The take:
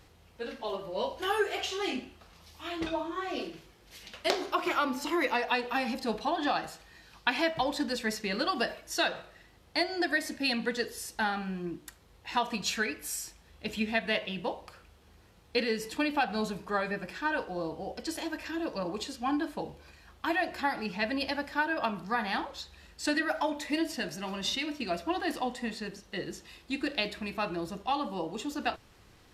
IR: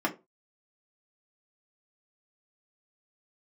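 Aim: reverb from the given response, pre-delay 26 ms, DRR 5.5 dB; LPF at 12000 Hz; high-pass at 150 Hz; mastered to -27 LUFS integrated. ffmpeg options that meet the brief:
-filter_complex "[0:a]highpass=150,lowpass=12k,asplit=2[a][b];[1:a]atrim=start_sample=2205,adelay=26[c];[b][c]afir=irnorm=-1:irlink=0,volume=-15dB[d];[a][d]amix=inputs=2:normalize=0,volume=4dB"

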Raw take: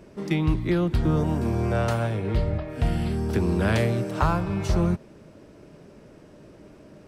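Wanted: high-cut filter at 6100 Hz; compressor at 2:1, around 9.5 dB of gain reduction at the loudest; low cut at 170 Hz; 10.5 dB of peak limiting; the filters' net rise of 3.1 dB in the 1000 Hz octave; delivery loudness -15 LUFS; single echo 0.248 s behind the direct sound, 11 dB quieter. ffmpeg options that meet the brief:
-af "highpass=170,lowpass=6.1k,equalizer=f=1k:t=o:g=4,acompressor=threshold=-35dB:ratio=2,alimiter=level_in=3dB:limit=-24dB:level=0:latency=1,volume=-3dB,aecho=1:1:248:0.282,volume=21dB"

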